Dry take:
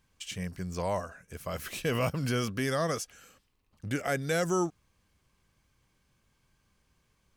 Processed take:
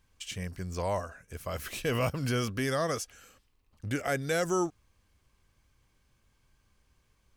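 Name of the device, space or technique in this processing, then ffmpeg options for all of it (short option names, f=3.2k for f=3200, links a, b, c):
low shelf boost with a cut just above: -af "lowshelf=f=81:g=6.5,equalizer=f=170:t=o:w=0.56:g=-5"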